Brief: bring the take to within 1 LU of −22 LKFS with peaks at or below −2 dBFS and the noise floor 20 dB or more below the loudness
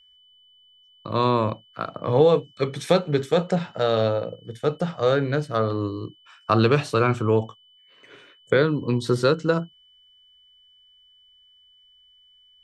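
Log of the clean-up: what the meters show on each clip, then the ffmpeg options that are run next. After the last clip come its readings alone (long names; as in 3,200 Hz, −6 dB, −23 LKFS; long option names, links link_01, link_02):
interfering tone 3,000 Hz; level of the tone −54 dBFS; integrated loudness −23.0 LKFS; sample peak −5.0 dBFS; target loudness −22.0 LKFS
→ -af "bandreject=frequency=3000:width=30"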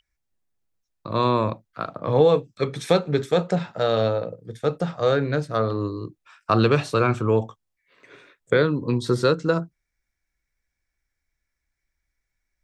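interfering tone none found; integrated loudness −23.0 LKFS; sample peak −4.5 dBFS; target loudness −22.0 LKFS
→ -af "volume=1dB"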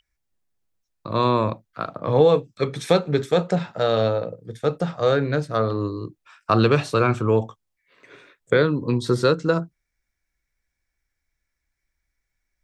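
integrated loudness −22.0 LKFS; sample peak −3.5 dBFS; background noise floor −80 dBFS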